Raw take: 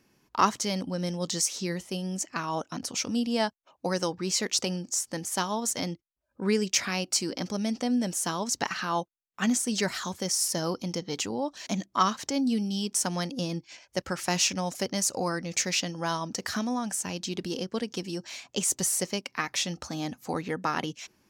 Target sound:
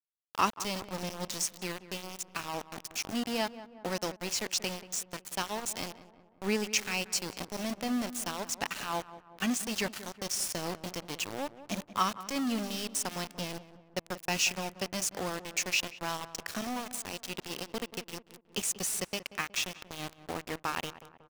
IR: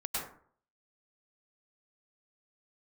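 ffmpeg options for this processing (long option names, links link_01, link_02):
-filter_complex "[0:a]equalizer=frequency=2600:width_type=o:width=0.33:gain=9.5,aeval=exprs='val(0)*gte(abs(val(0)),0.0398)':channel_layout=same,asplit=2[link_01][link_02];[link_02]adelay=184,lowpass=frequency=1600:poles=1,volume=-14dB,asplit=2[link_03][link_04];[link_04]adelay=184,lowpass=frequency=1600:poles=1,volume=0.54,asplit=2[link_05][link_06];[link_06]adelay=184,lowpass=frequency=1600:poles=1,volume=0.54,asplit=2[link_07][link_08];[link_08]adelay=184,lowpass=frequency=1600:poles=1,volume=0.54,asplit=2[link_09][link_10];[link_10]adelay=184,lowpass=frequency=1600:poles=1,volume=0.54[link_11];[link_03][link_05][link_07][link_09][link_11]amix=inputs=5:normalize=0[link_12];[link_01][link_12]amix=inputs=2:normalize=0,volume=-5dB"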